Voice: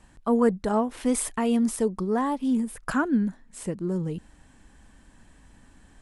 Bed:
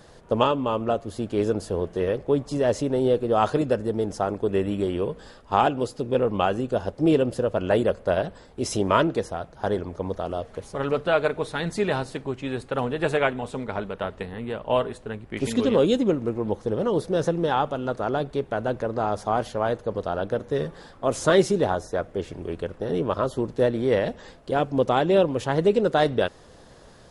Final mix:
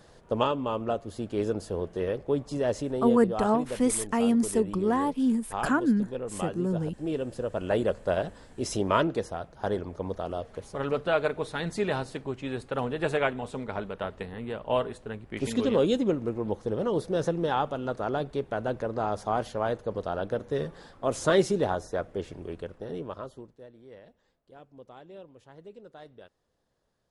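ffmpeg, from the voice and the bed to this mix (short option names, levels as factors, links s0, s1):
-filter_complex "[0:a]adelay=2750,volume=0.944[s0];[1:a]volume=1.5,afade=t=out:st=2.64:d=0.87:silence=0.421697,afade=t=in:st=7.05:d=0.86:silence=0.375837,afade=t=out:st=22.13:d=1.46:silence=0.0668344[s1];[s0][s1]amix=inputs=2:normalize=0"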